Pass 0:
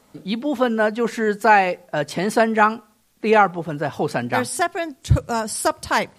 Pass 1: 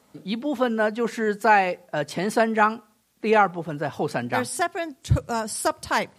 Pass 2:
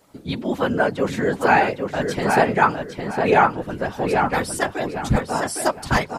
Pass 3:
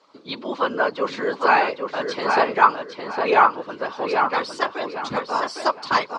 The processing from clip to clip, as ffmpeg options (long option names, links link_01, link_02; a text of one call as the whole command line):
ffmpeg -i in.wav -af "highpass=62,volume=-3.5dB" out.wav
ffmpeg -i in.wav -filter_complex "[0:a]afftfilt=real='hypot(re,im)*cos(2*PI*random(0))':imag='hypot(re,im)*sin(2*PI*random(1))':win_size=512:overlap=0.75,asplit=2[link_01][link_02];[link_02]adelay=808,lowpass=frequency=3500:poles=1,volume=-4.5dB,asplit=2[link_03][link_04];[link_04]adelay=808,lowpass=frequency=3500:poles=1,volume=0.29,asplit=2[link_05][link_06];[link_06]adelay=808,lowpass=frequency=3500:poles=1,volume=0.29,asplit=2[link_07][link_08];[link_08]adelay=808,lowpass=frequency=3500:poles=1,volume=0.29[link_09];[link_01][link_03][link_05][link_07][link_09]amix=inputs=5:normalize=0,volume=8dB" out.wav
ffmpeg -i in.wav -af "highpass=390,equalizer=frequency=730:width_type=q:width=4:gain=-5,equalizer=frequency=1100:width_type=q:width=4:gain=9,equalizer=frequency=1800:width_type=q:width=4:gain=-4,equalizer=frequency=4400:width_type=q:width=4:gain=6,lowpass=frequency=5400:width=0.5412,lowpass=frequency=5400:width=1.3066" out.wav